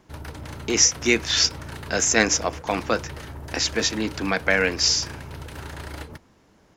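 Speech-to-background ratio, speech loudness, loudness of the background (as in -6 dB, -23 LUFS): 16.0 dB, -21.5 LUFS, -37.5 LUFS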